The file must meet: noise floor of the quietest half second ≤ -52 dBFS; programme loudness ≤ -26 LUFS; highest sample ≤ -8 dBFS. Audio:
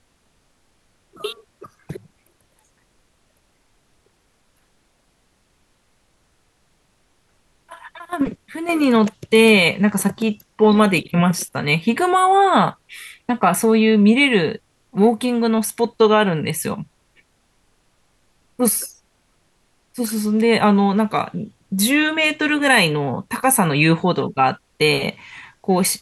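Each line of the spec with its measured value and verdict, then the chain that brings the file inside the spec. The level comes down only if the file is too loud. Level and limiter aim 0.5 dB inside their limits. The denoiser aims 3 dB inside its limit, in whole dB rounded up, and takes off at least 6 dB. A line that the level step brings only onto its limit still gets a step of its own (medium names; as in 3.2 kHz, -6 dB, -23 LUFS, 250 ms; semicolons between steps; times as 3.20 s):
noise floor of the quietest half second -62 dBFS: pass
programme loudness -17.5 LUFS: fail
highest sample -3.5 dBFS: fail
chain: trim -9 dB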